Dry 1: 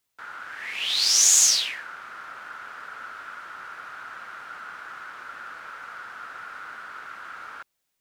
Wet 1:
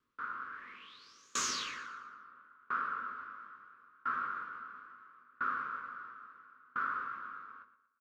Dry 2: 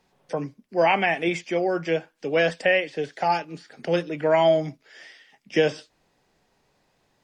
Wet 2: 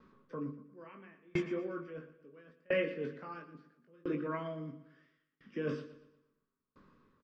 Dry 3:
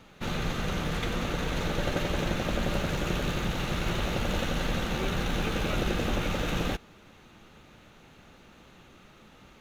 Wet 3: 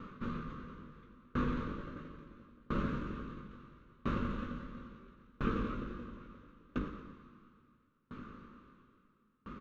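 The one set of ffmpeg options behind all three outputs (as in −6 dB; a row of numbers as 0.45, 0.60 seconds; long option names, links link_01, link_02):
-filter_complex "[0:a]firequalizer=gain_entry='entry(470,0);entry(760,-23);entry(1100,7);entry(1900,-9);entry(9700,-30)':delay=0.05:min_phase=1,areverse,acompressor=threshold=-36dB:ratio=6,areverse,equalizer=frequency=240:width_type=o:width=0.52:gain=9,bandreject=frequency=50:width_type=h:width=6,bandreject=frequency=100:width_type=h:width=6,bandreject=frequency=150:width_type=h:width=6,bandreject=frequency=200:width_type=h:width=6,bandreject=frequency=250:width_type=h:width=6,bandreject=frequency=300:width_type=h:width=6,bandreject=frequency=350:width_type=h:width=6,bandreject=frequency=400:width_type=h:width=6,bandreject=frequency=450:width_type=h:width=6,bandreject=frequency=500:width_type=h:width=6,asplit=2[link_01][link_02];[link_02]adelay=20,volume=-4.5dB[link_03];[link_01][link_03]amix=inputs=2:normalize=0,aecho=1:1:118|236|354|472|590|708:0.282|0.158|0.0884|0.0495|0.0277|0.0155,aeval=exprs='val(0)*pow(10,-33*if(lt(mod(0.74*n/s,1),2*abs(0.74)/1000),1-mod(0.74*n/s,1)/(2*abs(0.74)/1000),(mod(0.74*n/s,1)-2*abs(0.74)/1000)/(1-2*abs(0.74)/1000))/20)':channel_layout=same,volume=6dB"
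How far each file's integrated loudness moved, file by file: −20.5, −15.5, −10.5 LU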